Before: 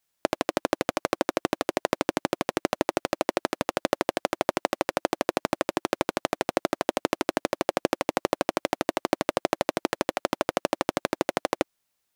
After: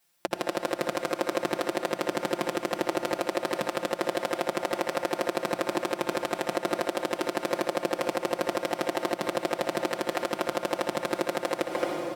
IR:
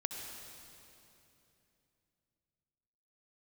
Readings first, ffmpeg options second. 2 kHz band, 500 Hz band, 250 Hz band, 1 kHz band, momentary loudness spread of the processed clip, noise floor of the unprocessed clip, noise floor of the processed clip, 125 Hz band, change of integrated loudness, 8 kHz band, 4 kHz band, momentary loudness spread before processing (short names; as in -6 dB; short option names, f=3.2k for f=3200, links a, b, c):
-1.0 dB, -0.5 dB, -2.0 dB, -2.0 dB, 1 LU, -78 dBFS, -41 dBFS, -2.5 dB, -1.5 dB, -2.5 dB, -1.5 dB, 2 LU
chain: -filter_complex "[0:a]bandreject=f=60:t=h:w=6,bandreject=f=120:t=h:w=6,bandreject=f=180:t=h:w=6,aecho=1:1:5.7:0.96,asplit=2[a][b];[b]adelay=220,highpass=300,lowpass=3.4k,asoftclip=type=hard:threshold=-12.5dB,volume=-7dB[c];[a][c]amix=inputs=2:normalize=0,asplit=2[d][e];[1:a]atrim=start_sample=2205[f];[e][f]afir=irnorm=-1:irlink=0,volume=-1dB[g];[d][g]amix=inputs=2:normalize=0,acompressor=threshold=-19dB:ratio=3,alimiter=limit=-10dB:level=0:latency=1:release=270,highpass=59,bandreject=f=6.6k:w=15"